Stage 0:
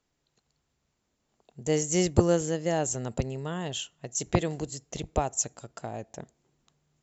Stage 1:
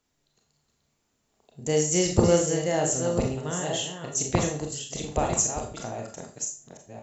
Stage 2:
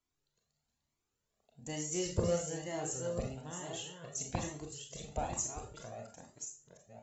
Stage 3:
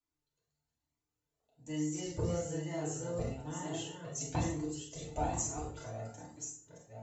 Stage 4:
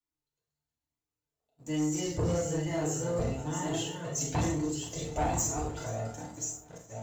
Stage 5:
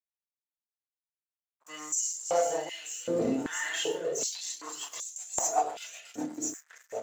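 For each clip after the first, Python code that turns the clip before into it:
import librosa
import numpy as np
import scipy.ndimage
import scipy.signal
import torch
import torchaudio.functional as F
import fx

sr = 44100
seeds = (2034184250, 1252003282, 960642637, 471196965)

y1 = fx.reverse_delay(x, sr, ms=538, wet_db=-7.0)
y1 = fx.high_shelf(y1, sr, hz=6100.0, db=5.0)
y1 = fx.rev_schroeder(y1, sr, rt60_s=0.37, comb_ms=27, drr_db=1.5)
y2 = fx.comb_cascade(y1, sr, direction='rising', hz=1.1)
y2 = F.gain(torch.from_numpy(y2), -8.0).numpy()
y3 = fx.rev_fdn(y2, sr, rt60_s=0.41, lf_ratio=1.5, hf_ratio=0.55, size_ms=20.0, drr_db=-4.5)
y3 = fx.rider(y3, sr, range_db=4, speed_s=2.0)
y3 = F.gain(torch.from_numpy(y3), -6.5).numpy()
y4 = fx.leveller(y3, sr, passes=2)
y4 = fx.echo_feedback(y4, sr, ms=480, feedback_pct=53, wet_db=-20.0)
y5 = fx.rotary_switch(y4, sr, hz=0.75, then_hz=8.0, switch_at_s=3.91)
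y5 = np.sign(y5) * np.maximum(np.abs(y5) - 10.0 ** (-54.0 / 20.0), 0.0)
y5 = fx.filter_held_highpass(y5, sr, hz=2.6, low_hz=280.0, high_hz=6800.0)
y5 = F.gain(torch.from_numpy(y5), 4.0).numpy()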